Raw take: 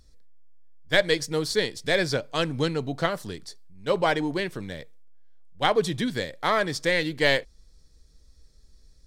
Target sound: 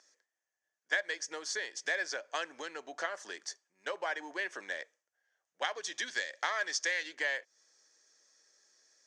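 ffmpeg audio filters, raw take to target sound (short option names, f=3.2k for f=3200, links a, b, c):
-filter_complex "[0:a]asettb=1/sr,asplit=3[a][b][c];[a]atrim=end=5.644[d];[b]atrim=start=5.64:end=7.15,asetpts=PTS-STARTPTS,afade=t=in:d=0.004:c=qsin,afade=t=out:st=1.506:d=0.004:c=qsin,equalizer=f=4.9k:t=o:w=2:g=9[e];[c]atrim=start=7.146[f];[d][e]acrossfade=d=0.004:c1=hsin:c2=qsin[g];[g][f]acrossfade=d=0.004:c1=qsin:c2=hsin,acompressor=threshold=-31dB:ratio=12,highpass=f=440:w=0.5412,highpass=f=440:w=1.3066,equalizer=f=460:t=q:w=4:g=-7,equalizer=f=1.7k:t=q:w=4:g=9,equalizer=f=4k:t=q:w=4:g=-9,equalizer=f=6.3k:t=q:w=4:g=9,lowpass=f=7.5k:w=0.5412,lowpass=f=7.5k:w=1.3066"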